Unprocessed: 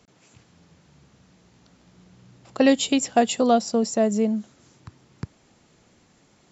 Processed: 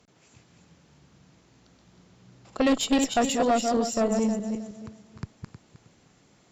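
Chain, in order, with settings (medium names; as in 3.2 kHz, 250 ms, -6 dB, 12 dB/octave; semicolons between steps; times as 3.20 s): backward echo that repeats 157 ms, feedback 49%, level -5 dB; valve stage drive 14 dB, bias 0.4; trim -1.5 dB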